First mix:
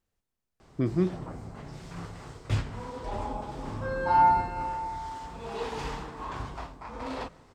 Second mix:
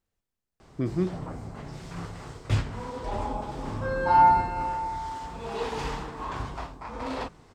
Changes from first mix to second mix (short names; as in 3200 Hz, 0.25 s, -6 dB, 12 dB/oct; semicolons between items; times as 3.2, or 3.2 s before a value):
background +4.0 dB; reverb: off